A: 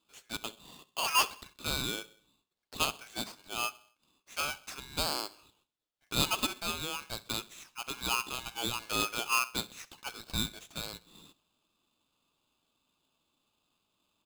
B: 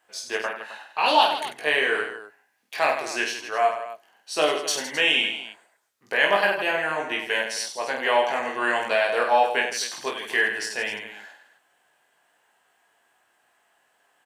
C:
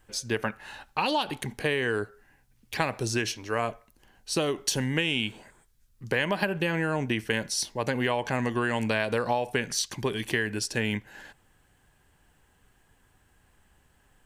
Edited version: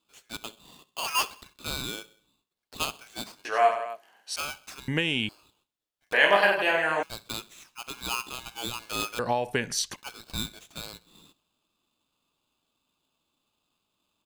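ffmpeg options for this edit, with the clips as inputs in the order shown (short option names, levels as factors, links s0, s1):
-filter_complex "[1:a]asplit=2[s0][s1];[2:a]asplit=2[s2][s3];[0:a]asplit=5[s4][s5][s6][s7][s8];[s4]atrim=end=3.452[s9];[s0]atrim=start=3.448:end=4.362[s10];[s5]atrim=start=4.358:end=4.882[s11];[s2]atrim=start=4.878:end=5.292[s12];[s6]atrim=start=5.288:end=6.132[s13];[s1]atrim=start=6.128:end=7.032[s14];[s7]atrim=start=7.028:end=9.192[s15];[s3]atrim=start=9.188:end=9.962[s16];[s8]atrim=start=9.958[s17];[s9][s10]acrossfade=d=0.004:c1=hsin:c2=hsin[s18];[s18][s11]acrossfade=d=0.004:c1=hsin:c2=hsin[s19];[s19][s12]acrossfade=d=0.004:c1=hsin:c2=hsin[s20];[s20][s13]acrossfade=d=0.004:c1=hsin:c2=hsin[s21];[s21][s14]acrossfade=d=0.004:c1=hsin:c2=hsin[s22];[s22][s15]acrossfade=d=0.004:c1=hsin:c2=hsin[s23];[s23][s16]acrossfade=d=0.004:c1=hsin:c2=hsin[s24];[s24][s17]acrossfade=d=0.004:c1=hsin:c2=hsin"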